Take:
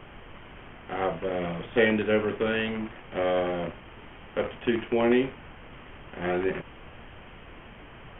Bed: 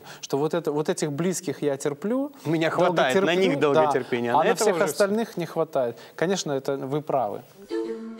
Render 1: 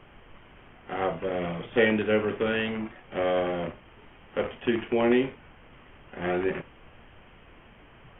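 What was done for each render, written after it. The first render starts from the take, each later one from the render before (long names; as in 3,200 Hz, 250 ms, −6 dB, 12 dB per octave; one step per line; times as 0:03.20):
noise reduction from a noise print 6 dB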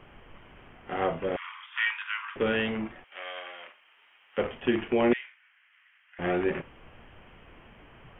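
0:01.36–0:02.36: Butterworth high-pass 940 Hz 96 dB per octave
0:03.04–0:04.38: Bessel high-pass filter 2,000 Hz
0:05.13–0:06.19: four-pole ladder high-pass 1,500 Hz, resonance 45%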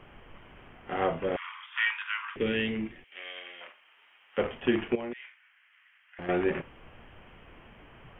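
0:02.36–0:03.61: flat-topped bell 910 Hz −10.5 dB
0:04.95–0:06.29: downward compressor 3 to 1, threshold −38 dBFS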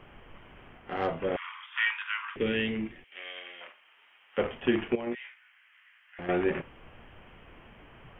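0:00.78–0:01.20: tube saturation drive 19 dB, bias 0.45
0:05.05–0:06.21: double-tracking delay 17 ms −2 dB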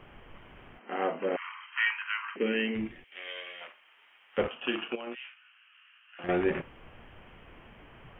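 0:00.79–0:02.75: linear-phase brick-wall band-pass 180–3,200 Hz
0:03.26–0:03.66: double-tracking delay 13 ms −3 dB
0:04.48–0:06.24: loudspeaker in its box 360–3,300 Hz, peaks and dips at 400 Hz −8 dB, 620 Hz −3 dB, 900 Hz −3 dB, 1,300 Hz +5 dB, 2,000 Hz −10 dB, 2,800 Hz +10 dB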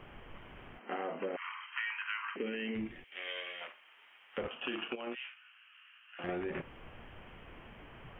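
brickwall limiter −22.5 dBFS, peak gain reduction 6.5 dB
downward compressor, threshold −34 dBFS, peak gain reduction 7 dB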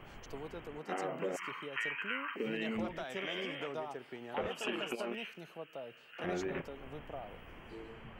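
mix in bed −21.5 dB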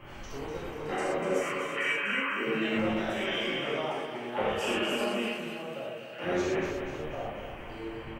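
repeating echo 245 ms, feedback 49%, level −7.5 dB
reverb whose tail is shaped and stops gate 150 ms flat, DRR −7 dB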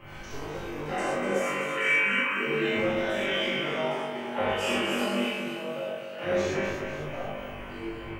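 flutter between parallel walls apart 3.5 metres, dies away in 0.42 s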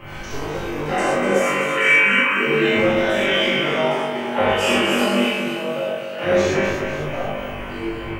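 level +9.5 dB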